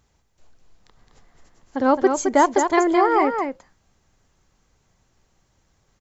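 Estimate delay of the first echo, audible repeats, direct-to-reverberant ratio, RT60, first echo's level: 0.215 s, 1, none, none, -6.0 dB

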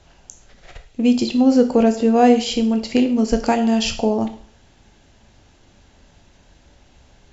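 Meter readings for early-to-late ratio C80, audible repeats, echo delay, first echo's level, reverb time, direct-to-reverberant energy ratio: 15.5 dB, none, none, none, 0.50 s, 6.5 dB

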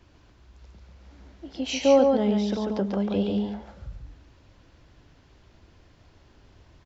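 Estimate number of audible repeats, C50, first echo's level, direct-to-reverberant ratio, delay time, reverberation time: 2, none, -4.0 dB, none, 0.141 s, none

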